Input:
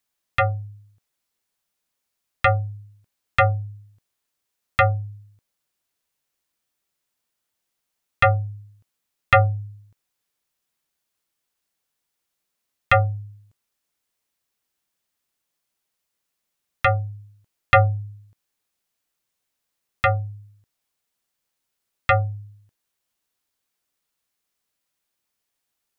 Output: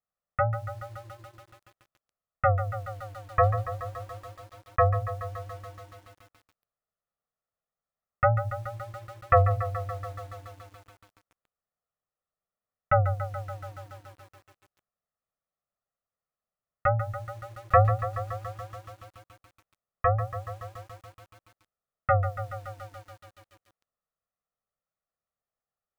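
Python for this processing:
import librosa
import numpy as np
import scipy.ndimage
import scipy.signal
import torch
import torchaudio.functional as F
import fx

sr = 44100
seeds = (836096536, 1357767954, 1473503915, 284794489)

y = fx.wow_flutter(x, sr, seeds[0], rate_hz=2.1, depth_cents=140.0)
y = scipy.signal.sosfilt(scipy.signal.butter(4, 1500.0, 'lowpass', fs=sr, output='sos'), y)
y = fx.hum_notches(y, sr, base_hz=60, count=2)
y = y + 0.67 * np.pad(y, (int(1.6 * sr / 1000.0), 0))[:len(y)]
y = fx.echo_crushed(y, sr, ms=142, feedback_pct=80, bits=7, wet_db=-11.0)
y = y * 10.0 ** (-7.0 / 20.0)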